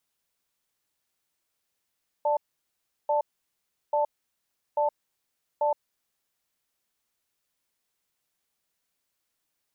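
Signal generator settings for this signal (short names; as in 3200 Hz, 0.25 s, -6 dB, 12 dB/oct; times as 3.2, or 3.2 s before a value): cadence 590 Hz, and 882 Hz, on 0.12 s, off 0.72 s, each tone -24 dBFS 3.83 s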